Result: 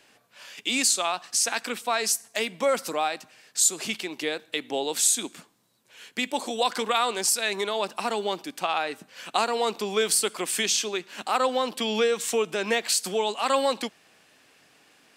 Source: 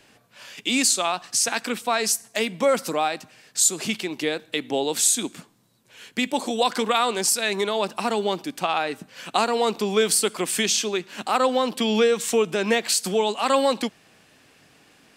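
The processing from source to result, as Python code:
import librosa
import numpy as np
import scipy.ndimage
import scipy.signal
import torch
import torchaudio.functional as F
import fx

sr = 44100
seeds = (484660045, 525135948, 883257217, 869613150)

y = fx.low_shelf(x, sr, hz=220.0, db=-11.5)
y = y * 10.0 ** (-2.0 / 20.0)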